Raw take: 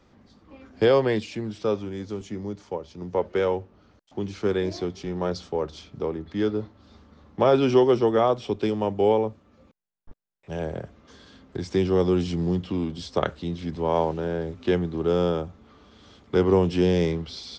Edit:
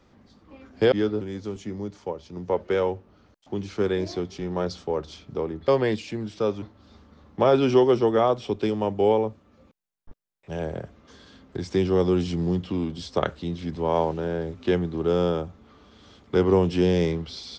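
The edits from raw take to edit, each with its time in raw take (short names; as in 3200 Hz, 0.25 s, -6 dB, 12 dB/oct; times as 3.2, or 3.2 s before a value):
0.92–1.86 swap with 6.33–6.62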